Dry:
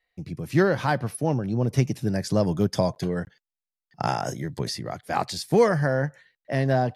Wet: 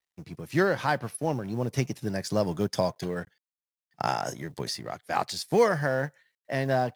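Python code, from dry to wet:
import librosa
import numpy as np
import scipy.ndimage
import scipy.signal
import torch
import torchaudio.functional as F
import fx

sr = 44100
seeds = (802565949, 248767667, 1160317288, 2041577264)

y = fx.law_mismatch(x, sr, coded='A')
y = fx.low_shelf(y, sr, hz=330.0, db=-7.5)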